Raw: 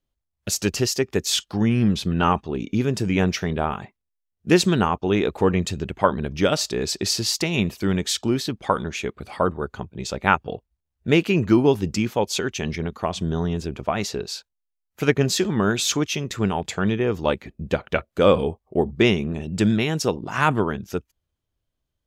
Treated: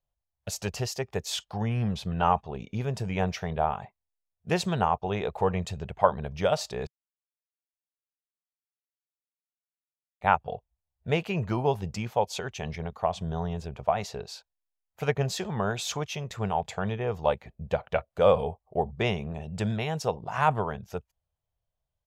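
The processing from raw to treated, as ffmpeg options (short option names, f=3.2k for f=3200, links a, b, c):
-filter_complex "[0:a]asplit=3[a][b][c];[a]atrim=end=6.87,asetpts=PTS-STARTPTS,afade=t=out:st=6.866:d=0.004:c=hsin[d];[b]atrim=start=6.87:end=10.21,asetpts=PTS-STARTPTS,volume=0[e];[c]atrim=start=10.21,asetpts=PTS-STARTPTS,afade=t=in:d=0.004:c=hsin[f];[d][e][f]concat=n=3:v=0:a=1,firequalizer=gain_entry='entry(140,0);entry(300,-15);entry(450,-1);entry(720,7);entry(1300,-3);entry(5600,-6)':delay=0.05:min_phase=1,volume=-5dB"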